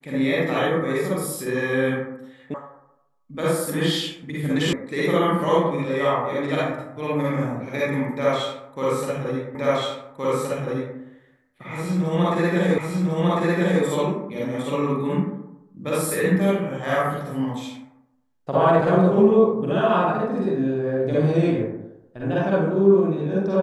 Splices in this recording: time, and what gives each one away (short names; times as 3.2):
2.54 sound cut off
4.73 sound cut off
9.55 repeat of the last 1.42 s
12.78 repeat of the last 1.05 s